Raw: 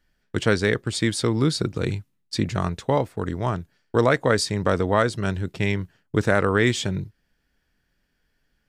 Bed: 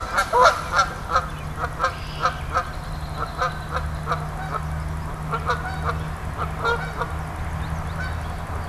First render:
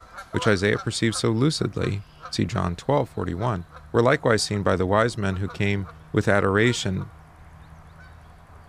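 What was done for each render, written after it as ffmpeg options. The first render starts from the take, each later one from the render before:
-filter_complex "[1:a]volume=-18.5dB[a];[0:a][a]amix=inputs=2:normalize=0"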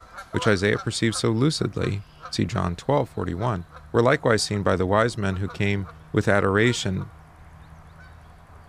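-af anull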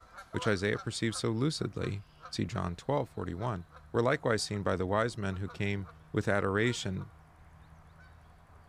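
-af "volume=-9.5dB"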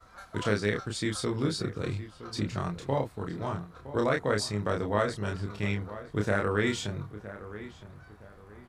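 -filter_complex "[0:a]asplit=2[a][b];[b]adelay=29,volume=-3dB[c];[a][c]amix=inputs=2:normalize=0,asplit=2[d][e];[e]adelay=965,lowpass=f=2.1k:p=1,volume=-14dB,asplit=2[f][g];[g]adelay=965,lowpass=f=2.1k:p=1,volume=0.31,asplit=2[h][i];[i]adelay=965,lowpass=f=2.1k:p=1,volume=0.31[j];[d][f][h][j]amix=inputs=4:normalize=0"

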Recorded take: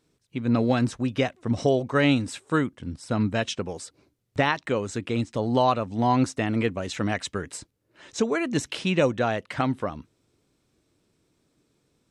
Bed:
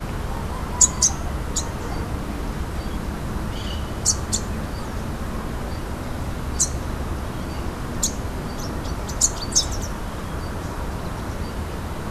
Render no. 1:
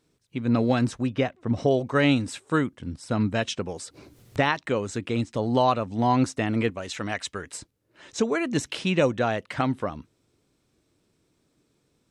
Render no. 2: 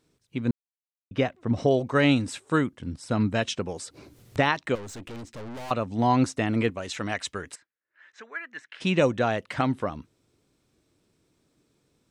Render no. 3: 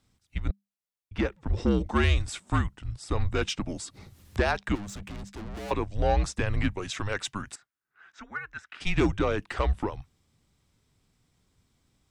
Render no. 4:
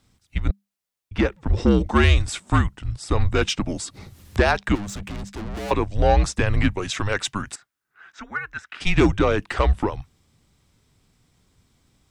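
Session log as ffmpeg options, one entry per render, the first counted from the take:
-filter_complex "[0:a]asettb=1/sr,asplit=3[a][b][c];[a]atrim=end=1.084[d];[b]atrim=start=1.08:end=1.71,asetpts=PTS-STARTPTS,afade=t=in:d=0.004:c=qsin,afade=t=out:st=0.626:d=0.004:c=qsin,lowpass=f=2.6k:p=1[e];[c]atrim=start=1.706[f];[d][e]acrossfade=d=0.004:c1=hsin:c2=qsin[g];[g][f]acrossfade=d=0.004:c1=qsin:c2=hsin,asettb=1/sr,asplit=3[h][i][j];[h]atrim=end=3.504[k];[i]atrim=start=3.5:end=4.47,asetpts=PTS-STARTPTS,afade=t=in:d=0.004:c=qsin,afade=t=out:st=0.966:d=0.004:c=qsin,acompressor=mode=upward:threshold=-33dB:ratio=2.5:attack=3.2:release=140:knee=2.83:detection=peak[l];[j]atrim=start=4.466[m];[k][l]acrossfade=d=0.004:c1=hsin:c2=qsin[n];[n][m]acrossfade=d=0.004:c1=qsin:c2=hsin,asettb=1/sr,asplit=3[o][p][q];[o]atrim=end=6.704[r];[p]atrim=start=6.7:end=7.54,asetpts=PTS-STARTPTS,afade=t=in:d=0.004:c=qsin,afade=t=out:st=0.836:d=0.004:c=qsin,equalizer=f=160:w=0.35:g=-7[s];[q]atrim=start=7.536[t];[r][s]acrossfade=d=0.004:c1=hsin:c2=qsin[u];[u][t]acrossfade=d=0.004:c1=qsin:c2=hsin"
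-filter_complex "[0:a]asettb=1/sr,asplit=3[a][b][c];[a]atrim=end=4.754[d];[b]atrim=start=4.75:end=5.71,asetpts=PTS-STARTPTS,afade=t=in:d=0.004:c=qsin,afade=t=out:st=0.956:d=0.004:c=qsin,aeval=exprs='(tanh(70.8*val(0)+0.35)-tanh(0.35))/70.8':c=same[e];[c]atrim=start=5.706[f];[d][e]acrossfade=d=0.004:c1=hsin:c2=qsin[g];[g][f]acrossfade=d=0.004:c1=qsin:c2=hsin,asplit=3[h][i][j];[h]afade=t=out:st=7.54:d=0.02[k];[i]bandpass=f=1.7k:t=q:w=4.2,afade=t=in:st=7.54:d=0.02,afade=t=out:st=8.8:d=0.02[l];[j]afade=t=in:st=8.8:d=0.02[m];[k][l][m]amix=inputs=3:normalize=0,asplit=3[n][o][p];[n]atrim=end=0.51,asetpts=PTS-STARTPTS,afade=t=out:st=0.506:d=0.004:c=hsin[q];[o]atrim=start=0.51:end=1.11,asetpts=PTS-STARTPTS,volume=0[r];[p]atrim=start=1.11,asetpts=PTS-STARTPTS,afade=t=in:d=0.004:c=hsin[s];[q][r][s]concat=n=3:v=0:a=1"
-af "asoftclip=type=tanh:threshold=-15.5dB,afreqshift=-200"
-af "volume=7dB"

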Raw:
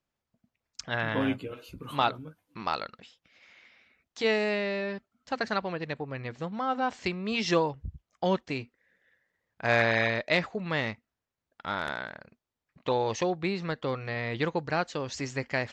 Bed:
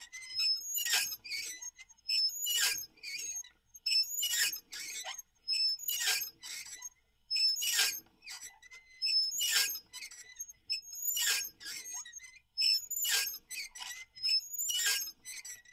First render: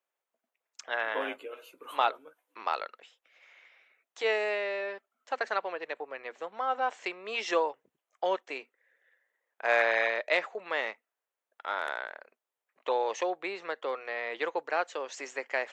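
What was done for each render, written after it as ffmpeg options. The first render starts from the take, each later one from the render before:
-af "highpass=f=430:w=0.5412,highpass=f=430:w=1.3066,equalizer=f=4.7k:w=1.9:g=-9.5"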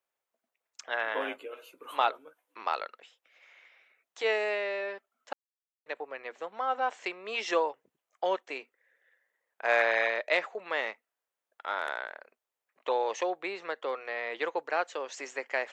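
-filter_complex "[0:a]asplit=3[a][b][c];[a]atrim=end=5.33,asetpts=PTS-STARTPTS,afade=t=out:st=5.326:d=0.004:c=hsin[d];[b]atrim=start=5.33:end=5.86,asetpts=PTS-STARTPTS,volume=0[e];[c]atrim=start=5.86,asetpts=PTS-STARTPTS,afade=t=in:d=0.004:c=hsin[f];[d][e][f]concat=n=3:v=0:a=1"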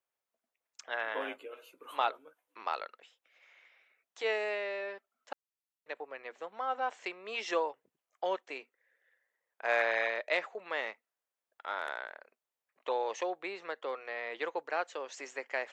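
-af "volume=-4dB"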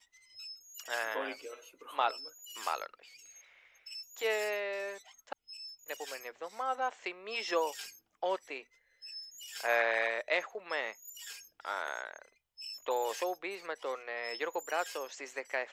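-filter_complex "[1:a]volume=-15.5dB[a];[0:a][a]amix=inputs=2:normalize=0"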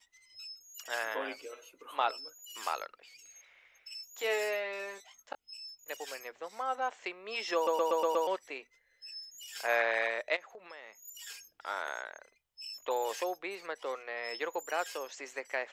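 -filter_complex "[0:a]asettb=1/sr,asplit=3[a][b][c];[a]atrim=end=3.944[d];[b]atrim=start=3.94:end=5.62,asetpts=PTS-STARTPTS,afade=t=in:d=0.004:c=qsin,afade=t=out:st=1.676:d=0.004:c=qsin,asplit=2[e][f];[f]adelay=21,volume=-8dB[g];[e][g]amix=inputs=2:normalize=0,atrim=end_sample=74088[h];[c]atrim=start=5.616[i];[d][h]acrossfade=d=0.004:c1=hsin:c2=qsin[j];[j][i]acrossfade=d=0.004:c1=qsin:c2=hsin,asplit=3[k][l][m];[k]afade=t=out:st=10.35:d=0.02[n];[l]acompressor=threshold=-47dB:ratio=4:attack=3.2:release=140:knee=1:detection=peak,afade=t=in:st=10.35:d=0.02,afade=t=out:st=11.02:d=0.02[o];[m]afade=t=in:st=11.02:d=0.02[p];[n][o][p]amix=inputs=3:normalize=0,asplit=7[q][r][s][t][u][v][w];[q]atrim=end=7.672[x];[r]atrim=start=7.548:end=7.672[y];[s]atrim=start=7.548:end=7.672[z];[t]atrim=start=7.548:end=7.672[aa];[u]atrim=start=7.548:end=7.672[ab];[v]atrim=start=7.548:end=7.672[ac];[w]atrim=start=8.268[ad];[x][y]acrossfade=d=0.004:c1=hsin:c2=hsin[ae];[ae][z]acrossfade=d=0.004:c1=hsin:c2=hsin[af];[af][aa]acrossfade=d=0.004:c1=hsin:c2=hsin[ag];[ag][ab]acrossfade=d=0.004:c1=hsin:c2=hsin[ah];[ah][ac]acrossfade=d=0.004:c1=hsin:c2=hsin[ai];[ai][ad]acrossfade=d=0.004:c1=hsin:c2=hsin"

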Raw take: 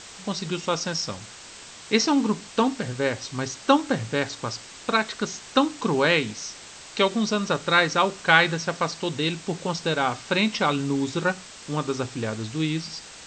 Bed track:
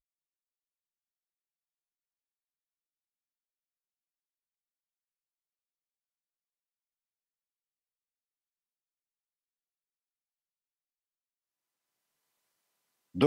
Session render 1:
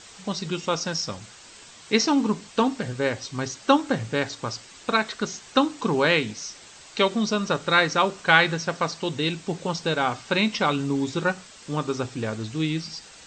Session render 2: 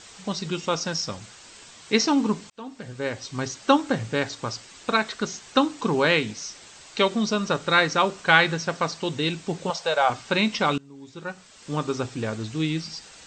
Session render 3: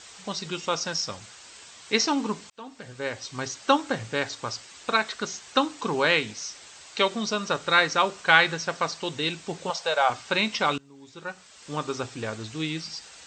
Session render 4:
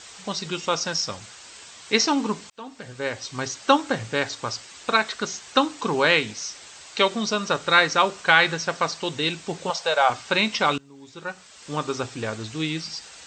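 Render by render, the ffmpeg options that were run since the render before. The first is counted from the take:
-af "afftdn=nr=6:nf=-44"
-filter_complex "[0:a]asettb=1/sr,asplit=3[a][b][c];[a]atrim=end=9.704[d];[b]atrim=start=9.7:end=10.1,asetpts=PTS-STARTPTS,afade=t=in:d=0.004:c=qsin,afade=t=out:st=0.396:d=0.004:c=qsin,lowshelf=f=420:t=q:w=3:g=-12[e];[c]atrim=start=10.096[f];[d][e]acrossfade=d=0.004:c1=hsin:c2=qsin[g];[g][f]acrossfade=d=0.004:c1=qsin:c2=hsin,asplit=3[h][i][j];[h]atrim=end=2.5,asetpts=PTS-STARTPTS,afade=t=out:st=2.496:d=0.004:c=hsin[k];[i]atrim=start=2.5:end=10.78,asetpts=PTS-STARTPTS,afade=t=in:d=0.89,afade=t=out:st=8.276:d=0.004:c=hsin:silence=0.0707946[l];[j]atrim=start=10.78,asetpts=PTS-STARTPTS,afade=t=in:d=0.96:c=qua:silence=0.0707946[m];[k][l][m]concat=n=3:v=0:a=1"
-af "highpass=53,equalizer=f=180:t=o:w=2.5:g=-7"
-af "volume=3dB,alimiter=limit=-2dB:level=0:latency=1"

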